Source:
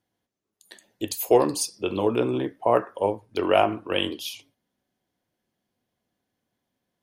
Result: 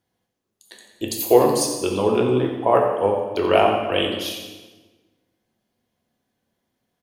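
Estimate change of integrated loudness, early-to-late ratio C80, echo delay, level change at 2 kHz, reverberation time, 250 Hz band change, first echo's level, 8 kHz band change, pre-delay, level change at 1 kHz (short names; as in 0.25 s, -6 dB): +4.5 dB, 5.0 dB, 88 ms, +4.0 dB, 1.3 s, +4.0 dB, -10.0 dB, +4.0 dB, 6 ms, +4.5 dB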